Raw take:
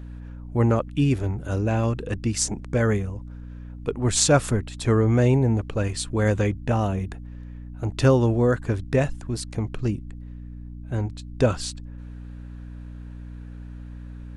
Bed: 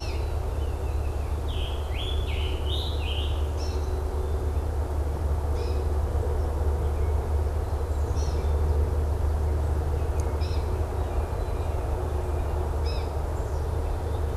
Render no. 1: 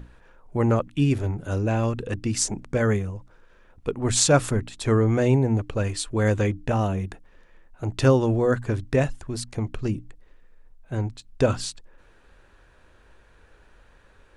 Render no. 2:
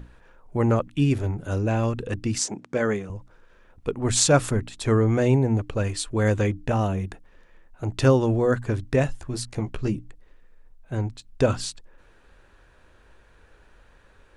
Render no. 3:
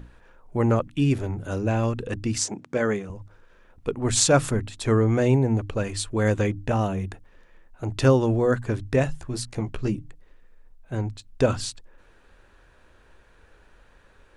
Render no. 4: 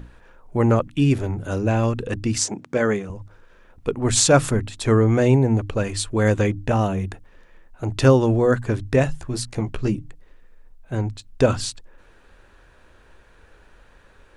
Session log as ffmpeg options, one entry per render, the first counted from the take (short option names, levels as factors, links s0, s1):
-af "bandreject=f=60:t=h:w=6,bandreject=f=120:t=h:w=6,bandreject=f=180:t=h:w=6,bandreject=f=240:t=h:w=6,bandreject=f=300:t=h:w=6"
-filter_complex "[0:a]asettb=1/sr,asplit=3[s0][s1][s2];[s0]atrim=end=2.384[s3];[s1]atrim=start=2.38:end=3.1,asetpts=PTS-STARTPTS,afade=t=in:d=0.004:c=qsin,afade=t=out:st=0.716:d=0.004:c=qsin,highpass=200,lowpass=7700[s4];[s2]atrim=start=3.096[s5];[s3][s4]acrossfade=d=0.004:c1=hsin:c2=qsin[s6];[s6][s5]acrossfade=d=0.004:c1=qsin:c2=hsin,asettb=1/sr,asplit=3[s7][s8][s9];[s7]atrim=end=9.074[s10];[s8]atrim=start=9.07:end=9.95,asetpts=PTS-STARTPTS,afade=t=in:d=0.004:c=qsin,afade=t=out:st=0.876:d=0.004:c=qsin,asplit=2[s11][s12];[s12]adelay=15,volume=0.473[s13];[s11][s13]amix=inputs=2:normalize=0,atrim=end_sample=38808[s14];[s9]atrim=start=9.946[s15];[s10][s14]acrossfade=d=0.004:c1=hsin:c2=qsin[s16];[s16][s15]acrossfade=d=0.004:c1=qsin:c2=hsin"
-af "bandreject=f=50:t=h:w=6,bandreject=f=100:t=h:w=6,bandreject=f=150:t=h:w=6"
-af "volume=1.5,alimiter=limit=0.891:level=0:latency=1"